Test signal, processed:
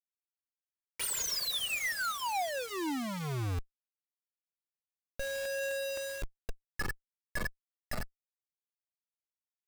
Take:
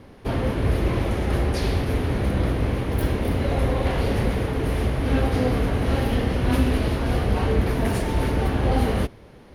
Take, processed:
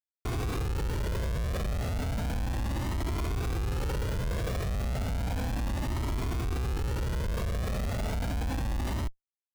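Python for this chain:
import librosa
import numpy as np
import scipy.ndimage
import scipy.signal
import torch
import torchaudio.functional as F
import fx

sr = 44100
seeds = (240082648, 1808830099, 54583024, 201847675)

y = fx.cvsd(x, sr, bps=64000)
y = fx.over_compress(y, sr, threshold_db=-27.0, ratio=-1.0)
y = fx.schmitt(y, sr, flips_db=-28.0)
y = fx.comb_cascade(y, sr, direction='rising', hz=0.33)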